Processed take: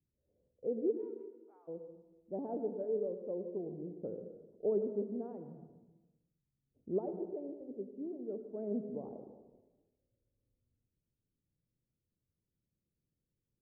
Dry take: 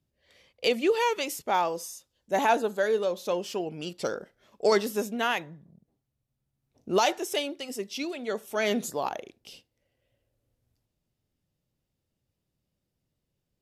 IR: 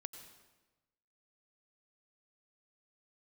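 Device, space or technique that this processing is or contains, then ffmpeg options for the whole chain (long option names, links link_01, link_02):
next room: -filter_complex "[0:a]asplit=3[link_01][link_02][link_03];[link_01]afade=type=out:start_time=0.91:duration=0.02[link_04];[link_02]highpass=frequency=1300:width=0.5412,highpass=frequency=1300:width=1.3066,afade=type=in:start_time=0.91:duration=0.02,afade=type=out:start_time=1.67:duration=0.02[link_05];[link_03]afade=type=in:start_time=1.67:duration=0.02[link_06];[link_04][link_05][link_06]amix=inputs=3:normalize=0,lowpass=frequency=490:width=0.5412,lowpass=frequency=490:width=1.3066[link_07];[1:a]atrim=start_sample=2205[link_08];[link_07][link_08]afir=irnorm=-1:irlink=0,volume=-3dB"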